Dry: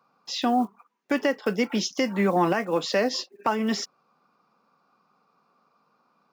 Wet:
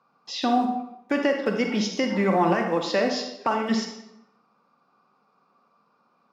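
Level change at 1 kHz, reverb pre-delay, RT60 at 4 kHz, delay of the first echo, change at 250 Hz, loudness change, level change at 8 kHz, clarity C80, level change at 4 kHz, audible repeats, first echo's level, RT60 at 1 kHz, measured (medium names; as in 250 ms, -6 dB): +1.5 dB, 40 ms, 0.65 s, no echo, +1.5 dB, +1.0 dB, -3.0 dB, 8.0 dB, -0.5 dB, no echo, no echo, 0.85 s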